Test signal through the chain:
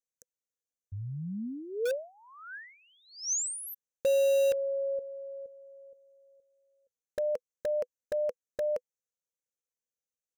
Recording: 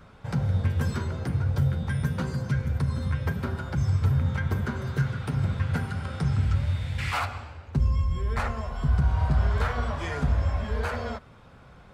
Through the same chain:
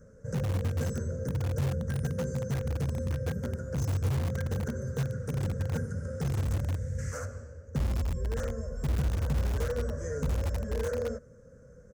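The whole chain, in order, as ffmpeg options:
-filter_complex "[0:a]firequalizer=gain_entry='entry(140,0);entry(230,2);entry(350,-7);entry(500,13);entry(770,-24);entry(1600,-4);entry(2400,-26);entry(3700,-29);entry(6100,9);entry(10000,-4)':delay=0.05:min_phase=1,asplit=2[a][b];[b]aeval=exprs='(mod(10.6*val(0)+1,2)-1)/10.6':c=same,volume=-9.5dB[c];[a][c]amix=inputs=2:normalize=0,volume=-6dB"

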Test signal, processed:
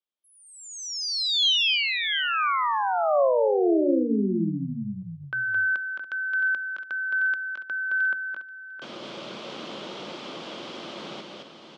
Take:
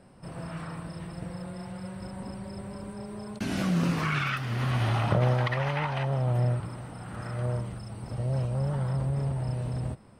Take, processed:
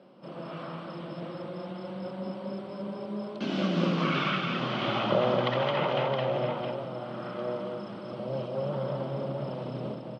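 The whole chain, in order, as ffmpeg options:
-af "highpass=f=170:w=0.5412,highpass=f=170:w=1.3066,equalizer=f=210:t=q:w=4:g=4,equalizer=f=340:t=q:w=4:g=7,equalizer=f=560:t=q:w=4:g=8,equalizer=f=1.2k:t=q:w=4:g=4,equalizer=f=1.8k:t=q:w=4:g=-6,equalizer=f=3.2k:t=q:w=4:g=8,lowpass=f=5k:w=0.5412,lowpass=f=5k:w=1.3066,bandreject=f=60:t=h:w=6,bandreject=f=120:t=h:w=6,bandreject=f=180:t=h:w=6,bandreject=f=240:t=h:w=6,bandreject=f=300:t=h:w=6,aecho=1:1:217|280|667|715:0.668|0.133|0.398|0.2,volume=-2dB"

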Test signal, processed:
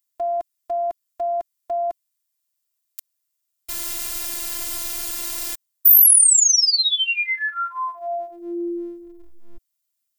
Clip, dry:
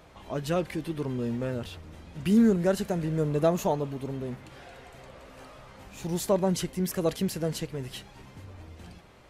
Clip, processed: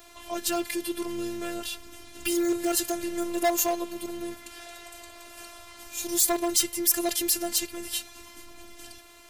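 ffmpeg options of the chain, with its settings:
-af "afftfilt=real='hypot(re,im)*cos(PI*b)':imag='0':win_size=512:overlap=0.75,volume=23dB,asoftclip=hard,volume=-23dB,crystalizer=i=5:c=0,volume=3dB"

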